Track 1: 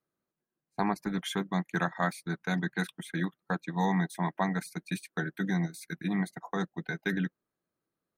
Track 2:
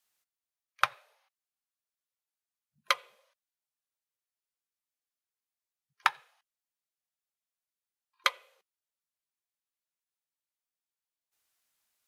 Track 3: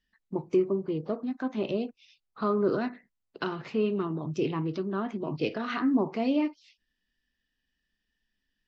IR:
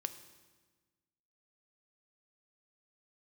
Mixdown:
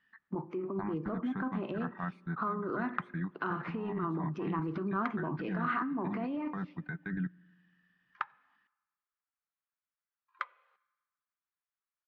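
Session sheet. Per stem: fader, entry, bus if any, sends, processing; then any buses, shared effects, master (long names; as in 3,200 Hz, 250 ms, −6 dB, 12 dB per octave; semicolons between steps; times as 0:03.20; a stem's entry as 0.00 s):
−10.0 dB, 0.00 s, bus A, send −13.5 dB, low-shelf EQ 180 Hz +10.5 dB
−4.5 dB, 2.15 s, no bus, send −19 dB, downward compressor 2.5 to 1, threshold −30 dBFS, peak gain reduction 8.5 dB
+1.5 dB, 0.00 s, bus A, send −8 dB, high-pass filter 210 Hz 12 dB per octave
bus A: 0.0 dB, compressor whose output falls as the input rises −30 dBFS, ratio −0.5; brickwall limiter −25 dBFS, peak gain reduction 9 dB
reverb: on, RT60 1.4 s, pre-delay 3 ms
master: low-pass with resonance 1,300 Hz, resonance Q 1.7; parametric band 520 Hz −10.5 dB 1.7 octaves; one half of a high-frequency compander encoder only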